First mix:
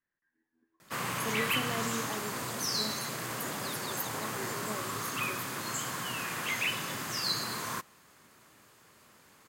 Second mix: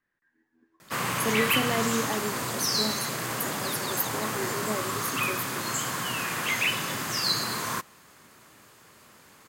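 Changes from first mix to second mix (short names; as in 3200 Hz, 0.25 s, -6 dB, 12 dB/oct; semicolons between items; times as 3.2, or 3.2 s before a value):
speech +9.0 dB; background +5.5 dB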